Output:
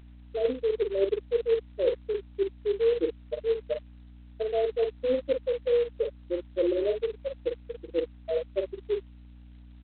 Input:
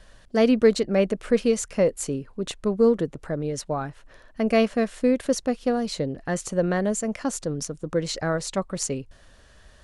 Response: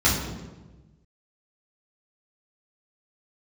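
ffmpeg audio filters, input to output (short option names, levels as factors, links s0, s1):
-filter_complex "[0:a]lowshelf=f=250:t=q:w=3:g=-13.5,afftfilt=real='re*gte(hypot(re,im),0.631)':imag='im*gte(hypot(re,im),0.631)':win_size=1024:overlap=0.75,areverse,acompressor=threshold=0.0708:ratio=20,areverse,aeval=exprs='val(0)+0.00355*(sin(2*PI*60*n/s)+sin(2*PI*2*60*n/s)/2+sin(2*PI*3*60*n/s)/3+sin(2*PI*4*60*n/s)/4+sin(2*PI*5*60*n/s)/5)':c=same,asplit=2[s0][s1];[s1]aecho=0:1:15|46:0.211|0.473[s2];[s0][s2]amix=inputs=2:normalize=0" -ar 8000 -c:a adpcm_g726 -b:a 16k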